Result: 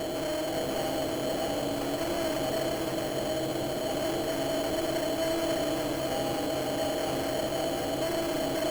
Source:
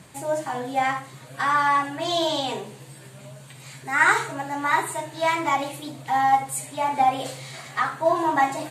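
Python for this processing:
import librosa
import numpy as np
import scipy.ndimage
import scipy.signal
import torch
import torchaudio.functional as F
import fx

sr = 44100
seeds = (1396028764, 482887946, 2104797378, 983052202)

p1 = fx.bin_compress(x, sr, power=0.2)
p2 = scipy.signal.sosfilt(scipy.signal.cheby2(4, 50, [1000.0, 2000.0], 'bandstop', fs=sr, output='sos'), p1)
p3 = fx.high_shelf(p2, sr, hz=3800.0, db=-11.5)
p4 = p3 + 0.5 * np.pad(p3, (int(6.3 * sr / 1000.0), 0))[:len(p3)]
p5 = fx.sample_hold(p4, sr, seeds[0], rate_hz=3700.0, jitter_pct=0)
p6 = 10.0 ** (-24.0 / 20.0) * np.tanh(p5 / 10.0 ** (-24.0 / 20.0))
p7 = p6 + fx.echo_single(p6, sr, ms=543, db=-4.0, dry=0)
y = p7 * 10.0 ** (-4.5 / 20.0)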